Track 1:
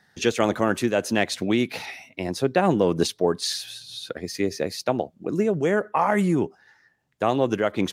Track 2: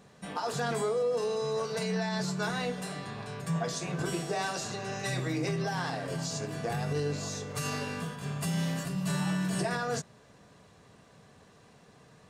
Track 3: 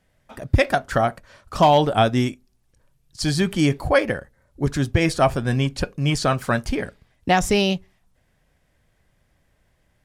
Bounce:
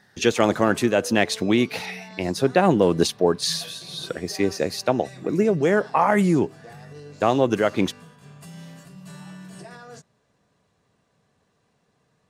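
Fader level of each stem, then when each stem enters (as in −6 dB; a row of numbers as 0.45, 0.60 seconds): +2.5 dB, −10.5 dB, muted; 0.00 s, 0.00 s, muted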